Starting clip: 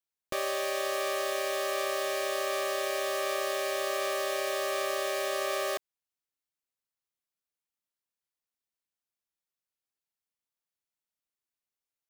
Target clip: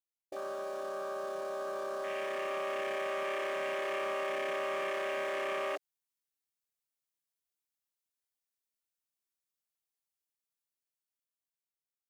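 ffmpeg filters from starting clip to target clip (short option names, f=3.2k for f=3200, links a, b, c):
-filter_complex "[0:a]dynaudnorm=f=970:g=5:m=9dB,asoftclip=type=tanh:threshold=-27dB,alimiter=level_in=10.5dB:limit=-24dB:level=0:latency=1,volume=-10.5dB,acrossover=split=9800[a][b];[b]acompressor=threshold=-57dB:ratio=4:attack=1:release=60[c];[a][c]amix=inputs=2:normalize=0,afwtdn=0.01,highshelf=f=4.7k:g=7.5,volume=2.5dB"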